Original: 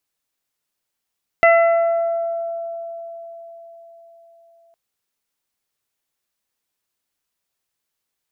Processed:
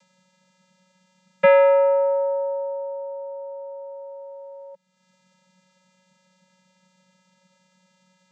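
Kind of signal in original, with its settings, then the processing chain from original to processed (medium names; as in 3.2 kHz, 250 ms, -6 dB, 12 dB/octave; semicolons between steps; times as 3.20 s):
additive tone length 3.31 s, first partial 672 Hz, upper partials -8/-3/-16.5 dB, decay 4.65 s, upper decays 1.87/1.03/0.83 s, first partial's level -9.5 dB
upward compressor, threshold -30 dBFS; vocoder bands 16, square 185 Hz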